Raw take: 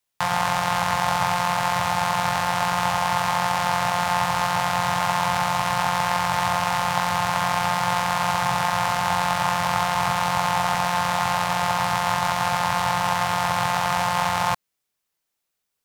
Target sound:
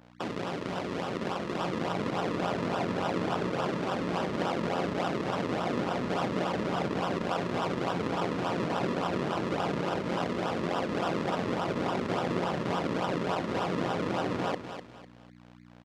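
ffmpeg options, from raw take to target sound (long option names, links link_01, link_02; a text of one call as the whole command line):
ffmpeg -i in.wav -filter_complex "[0:a]afftfilt=real='re*lt(hypot(re,im),0.251)':imag='im*lt(hypot(re,im),0.251)':win_size=1024:overlap=0.75,acrossover=split=1900[link_01][link_02];[link_01]dynaudnorm=framelen=630:gausssize=5:maxgain=6dB[link_03];[link_03][link_02]amix=inputs=2:normalize=0,aeval=exprs='val(0)+0.00794*(sin(2*PI*60*n/s)+sin(2*PI*2*60*n/s)/2+sin(2*PI*3*60*n/s)/3+sin(2*PI*4*60*n/s)/4+sin(2*PI*5*60*n/s)/5)':channel_layout=same,acrusher=samples=40:mix=1:aa=0.000001:lfo=1:lforange=40:lforate=3.5,asoftclip=type=tanh:threshold=-15dB,highpass=180,lowpass=4500,asplit=2[link_04][link_05];[link_05]aecho=0:1:250|500|750:0.316|0.098|0.0304[link_06];[link_04][link_06]amix=inputs=2:normalize=0,adynamicequalizer=threshold=0.0224:dfrequency=1900:dqfactor=0.7:tfrequency=1900:tqfactor=0.7:attack=5:release=100:ratio=0.375:range=2:mode=cutabove:tftype=highshelf,volume=-4.5dB" out.wav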